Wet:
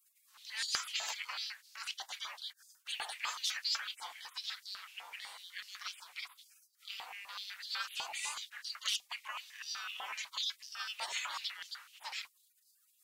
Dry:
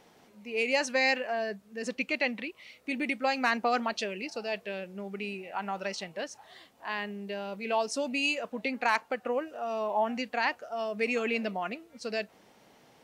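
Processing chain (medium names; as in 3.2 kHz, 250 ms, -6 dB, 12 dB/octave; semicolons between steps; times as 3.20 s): spectral gate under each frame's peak -30 dB weak; step-sequenced high-pass 8 Hz 830–4600 Hz; trim +9 dB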